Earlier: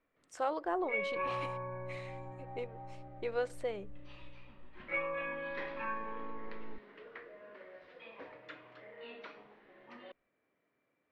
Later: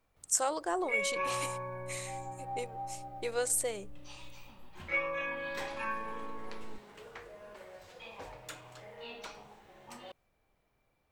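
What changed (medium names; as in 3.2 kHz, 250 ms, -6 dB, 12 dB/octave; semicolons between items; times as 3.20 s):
first sound: remove cabinet simulation 240–6100 Hz, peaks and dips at 280 Hz +5 dB, 820 Hz -10 dB, 1.9 kHz +6 dB; master: remove distance through air 360 m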